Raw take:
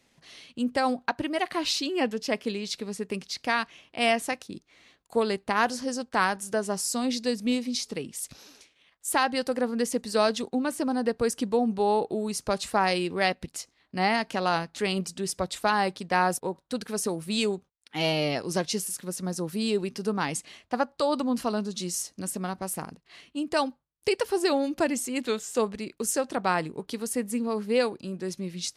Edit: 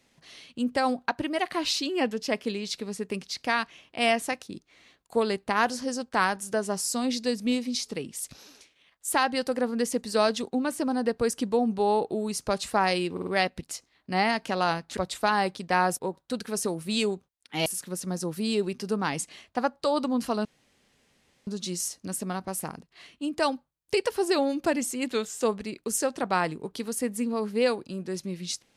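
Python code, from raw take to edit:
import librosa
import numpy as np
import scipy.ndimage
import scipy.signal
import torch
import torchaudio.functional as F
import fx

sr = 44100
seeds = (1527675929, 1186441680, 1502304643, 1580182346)

y = fx.edit(x, sr, fx.stutter(start_s=13.12, slice_s=0.05, count=4),
    fx.cut(start_s=14.82, length_s=0.56),
    fx.cut(start_s=18.07, length_s=0.75),
    fx.insert_room_tone(at_s=21.61, length_s=1.02), tone=tone)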